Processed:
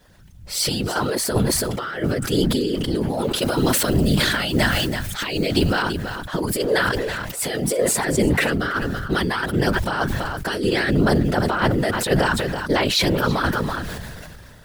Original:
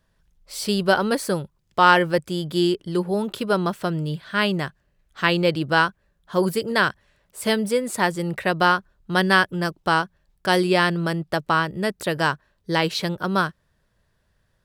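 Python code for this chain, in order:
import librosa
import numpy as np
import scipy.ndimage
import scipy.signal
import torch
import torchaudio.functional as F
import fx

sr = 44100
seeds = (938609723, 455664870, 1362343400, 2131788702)

y = fx.law_mismatch(x, sr, coded='mu')
y = fx.high_shelf(y, sr, hz=3700.0, db=10.5, at=(3.42, 5.82))
y = fx.over_compress(y, sr, threshold_db=-23.0, ratio=-0.5)
y = fx.peak_eq(y, sr, hz=190.0, db=-5.5, octaves=0.58)
y = fx.notch(y, sr, hz=1100.0, q=12.0)
y = y + 0.96 * np.pad(y, (int(6.2 * sr / 1000.0), 0))[:len(y)]
y = fx.whisperise(y, sr, seeds[0])
y = y + 10.0 ** (-18.5 / 20.0) * np.pad(y, (int(331 * sr / 1000.0), 0))[:len(y)]
y = fx.sustainer(y, sr, db_per_s=24.0)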